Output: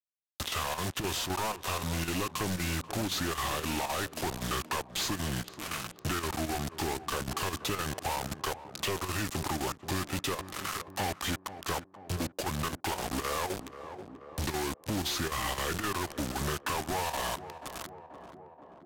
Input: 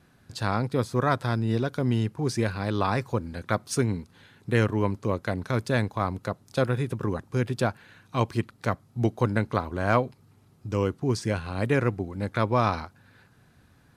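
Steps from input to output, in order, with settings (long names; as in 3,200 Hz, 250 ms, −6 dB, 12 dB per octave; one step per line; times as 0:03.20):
variable-slope delta modulation 64 kbit/s
tilt shelving filter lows −8.5 dB, about 640 Hz
in parallel at 0 dB: brickwall limiter −19.5 dBFS, peak gain reduction 10 dB
on the sum: downward compressor 16 to 1, threshold −27 dBFS, peak gain reduction 14.5 dB
log-companded quantiser 2 bits
square-wave tremolo 5.2 Hz, depth 60%, duty 85%
wrong playback speed 45 rpm record played at 33 rpm
on a send: tape delay 482 ms, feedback 63%, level −11.5 dB, low-pass 1,000 Hz
on the sum: multiband upward and downward compressor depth 40%
level −4.5 dB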